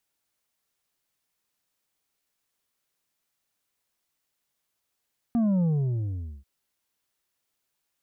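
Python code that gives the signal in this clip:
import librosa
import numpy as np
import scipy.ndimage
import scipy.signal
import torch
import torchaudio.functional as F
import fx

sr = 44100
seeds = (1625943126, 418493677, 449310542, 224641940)

y = fx.sub_drop(sr, level_db=-21.0, start_hz=240.0, length_s=1.09, drive_db=5.5, fade_s=0.82, end_hz=65.0)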